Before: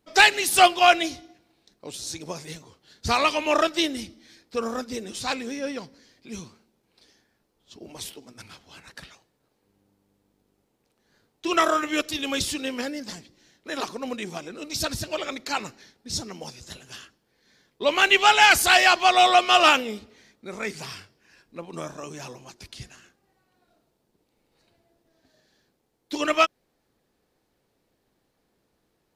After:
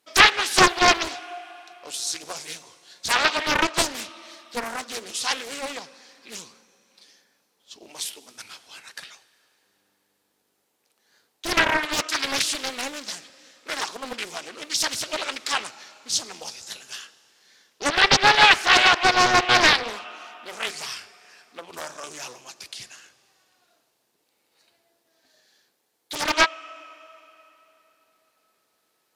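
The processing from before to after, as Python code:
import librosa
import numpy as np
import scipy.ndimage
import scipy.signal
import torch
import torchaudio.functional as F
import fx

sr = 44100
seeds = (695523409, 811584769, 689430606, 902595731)

y = fx.env_lowpass_down(x, sr, base_hz=2700.0, full_db=-16.0)
y = fx.highpass(y, sr, hz=1100.0, slope=6)
y = fx.high_shelf(y, sr, hz=7500.0, db=5.5)
y = fx.rev_plate(y, sr, seeds[0], rt60_s=3.5, hf_ratio=0.85, predelay_ms=0, drr_db=17.5)
y = fx.doppler_dist(y, sr, depth_ms=0.78)
y = y * librosa.db_to_amplitude(5.0)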